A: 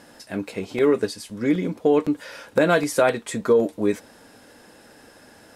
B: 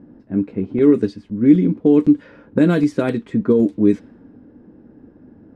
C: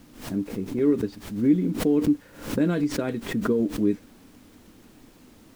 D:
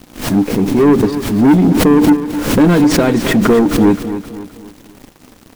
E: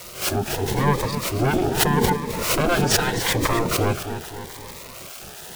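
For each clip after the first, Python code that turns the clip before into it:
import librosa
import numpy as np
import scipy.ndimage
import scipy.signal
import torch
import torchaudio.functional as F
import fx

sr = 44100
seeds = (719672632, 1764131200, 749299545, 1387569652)

y1 = fx.env_lowpass(x, sr, base_hz=860.0, full_db=-13.5)
y1 = fx.low_shelf_res(y1, sr, hz=430.0, db=12.5, q=1.5)
y1 = y1 * 10.0 ** (-4.5 / 20.0)
y2 = fx.dmg_noise_colour(y1, sr, seeds[0], colour='pink', level_db=-48.0)
y2 = fx.pre_swell(y2, sr, db_per_s=110.0)
y2 = y2 * 10.0 ** (-8.5 / 20.0)
y3 = fx.leveller(y2, sr, passes=3)
y3 = fx.echo_feedback(y3, sr, ms=261, feedback_pct=43, wet_db=-11.5)
y3 = y3 * 10.0 ** (6.0 / 20.0)
y4 = y3 + 0.5 * 10.0 ** (-29.0 / 20.0) * np.sign(y3)
y4 = fx.spec_gate(y4, sr, threshold_db=-10, keep='weak')
y4 = fx.notch_cascade(y4, sr, direction='rising', hz=0.82)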